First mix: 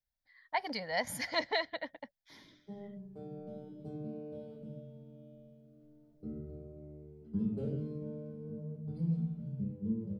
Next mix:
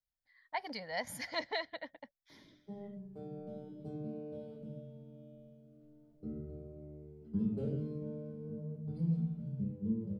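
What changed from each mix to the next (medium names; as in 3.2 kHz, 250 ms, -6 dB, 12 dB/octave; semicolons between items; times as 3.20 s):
speech -4.5 dB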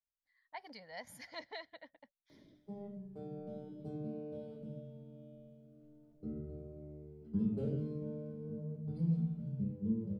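speech -9.5 dB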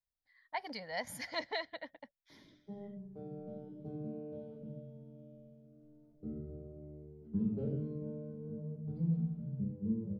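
speech +8.5 dB; background: add low-pass 1.3 kHz 6 dB/octave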